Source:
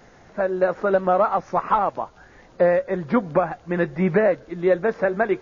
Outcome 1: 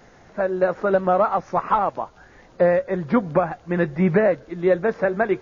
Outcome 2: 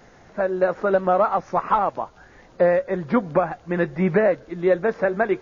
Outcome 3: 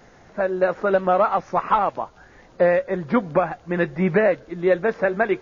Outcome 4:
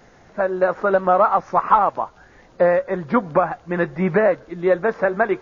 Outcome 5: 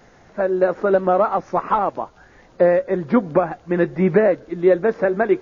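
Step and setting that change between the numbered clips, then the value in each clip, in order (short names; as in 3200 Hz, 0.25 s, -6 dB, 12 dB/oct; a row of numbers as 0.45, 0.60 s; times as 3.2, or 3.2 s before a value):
dynamic EQ, frequency: 110, 7800, 2800, 1100, 320 Hz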